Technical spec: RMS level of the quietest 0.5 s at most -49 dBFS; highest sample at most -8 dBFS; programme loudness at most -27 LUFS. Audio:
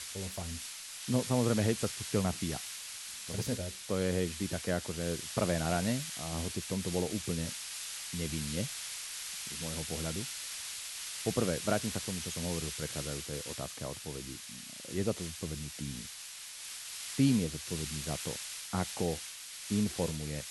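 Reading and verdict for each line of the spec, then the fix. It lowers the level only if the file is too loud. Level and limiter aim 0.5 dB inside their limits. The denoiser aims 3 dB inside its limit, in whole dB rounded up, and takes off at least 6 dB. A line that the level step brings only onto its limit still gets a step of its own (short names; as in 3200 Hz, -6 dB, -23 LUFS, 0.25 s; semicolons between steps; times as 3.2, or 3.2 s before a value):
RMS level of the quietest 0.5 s -46 dBFS: fail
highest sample -14.0 dBFS: OK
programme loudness -35.0 LUFS: OK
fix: denoiser 6 dB, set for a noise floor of -46 dBFS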